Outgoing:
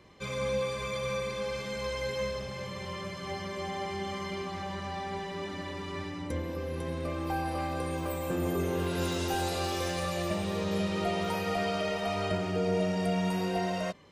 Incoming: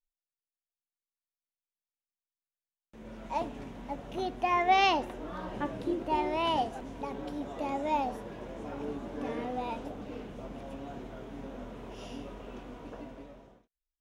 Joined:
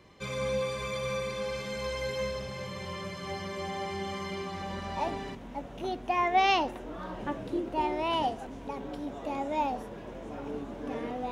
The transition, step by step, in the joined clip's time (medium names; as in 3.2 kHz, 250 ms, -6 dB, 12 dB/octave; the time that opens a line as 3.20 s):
outgoing
4.66 s: go over to incoming from 3.00 s, crossfade 1.38 s logarithmic